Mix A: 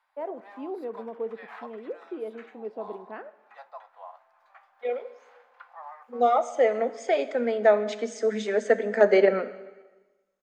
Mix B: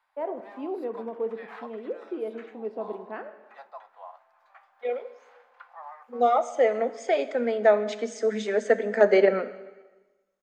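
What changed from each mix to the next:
first voice: send +10.5 dB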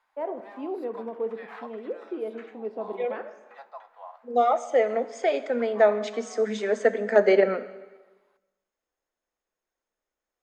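second voice: entry -1.85 s; background: send on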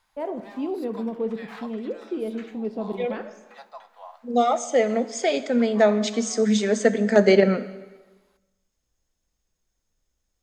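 master: remove three-band isolator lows -23 dB, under 320 Hz, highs -14 dB, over 2.4 kHz

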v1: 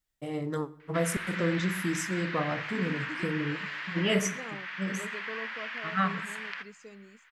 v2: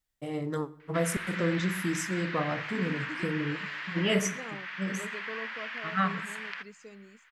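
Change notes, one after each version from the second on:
background: send -7.0 dB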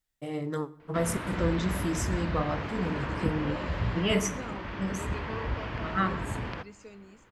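second voice: send on; background: remove resonant high-pass 1.8 kHz, resonance Q 2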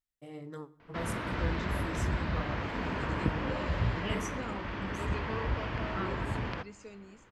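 first voice -11.0 dB

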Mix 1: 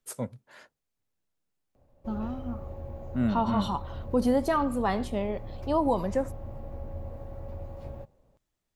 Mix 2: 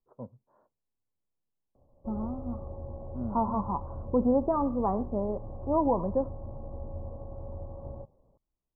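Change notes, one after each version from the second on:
first voice -8.5 dB; master: add elliptic low-pass 1.1 kHz, stop band 60 dB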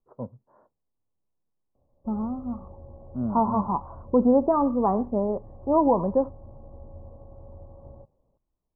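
first voice +7.0 dB; second voice +5.5 dB; background -5.0 dB

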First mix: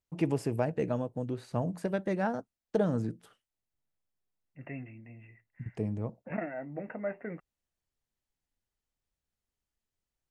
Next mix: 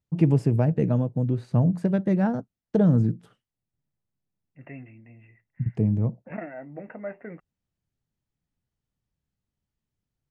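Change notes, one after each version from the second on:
first voice: add peaking EQ 140 Hz +14.5 dB 2.1 oct; master: add treble shelf 10 kHz -10.5 dB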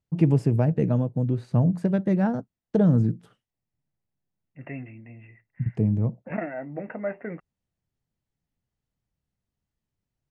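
second voice +5.0 dB

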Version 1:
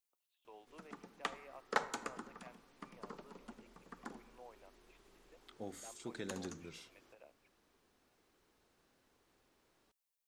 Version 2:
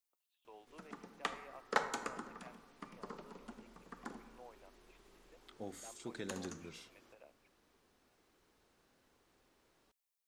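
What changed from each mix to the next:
background: send +6.0 dB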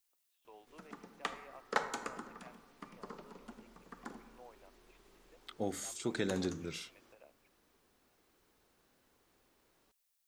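second voice +9.5 dB

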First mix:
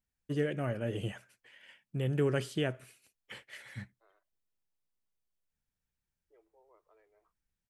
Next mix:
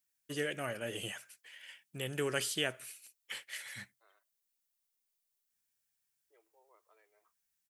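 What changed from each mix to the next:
master: add tilt EQ +4 dB/octave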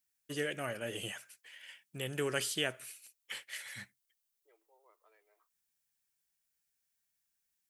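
second voice: entry -1.85 s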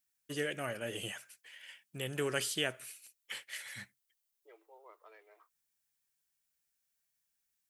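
second voice +10.5 dB

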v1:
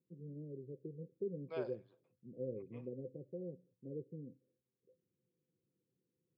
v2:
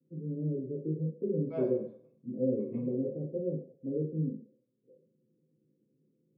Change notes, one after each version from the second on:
second voice: add tilt EQ -4.5 dB/octave; reverb: on, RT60 0.60 s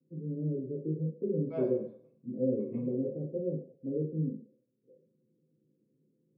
no change

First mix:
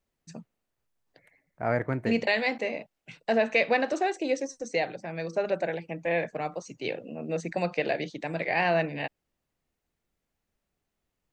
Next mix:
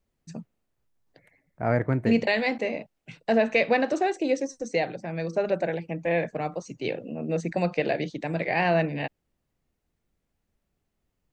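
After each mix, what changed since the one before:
master: add bass shelf 380 Hz +7 dB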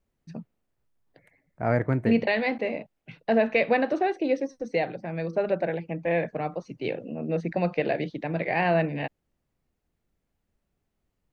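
first voice: add boxcar filter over 6 samples

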